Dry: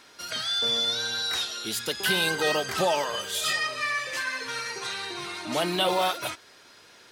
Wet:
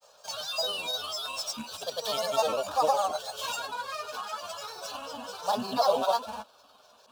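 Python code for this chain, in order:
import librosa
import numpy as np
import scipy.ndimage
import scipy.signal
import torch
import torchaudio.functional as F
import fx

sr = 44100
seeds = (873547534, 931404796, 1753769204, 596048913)

y = scipy.signal.medfilt(x, 5)
y = fx.low_shelf_res(y, sr, hz=290.0, db=-7.5, q=3.0)
y = fx.granulator(y, sr, seeds[0], grain_ms=100.0, per_s=20.0, spray_ms=100.0, spread_st=7)
y = fx.fixed_phaser(y, sr, hz=830.0, stages=4)
y = fx.small_body(y, sr, hz=(200.0, 610.0), ring_ms=45, db=6)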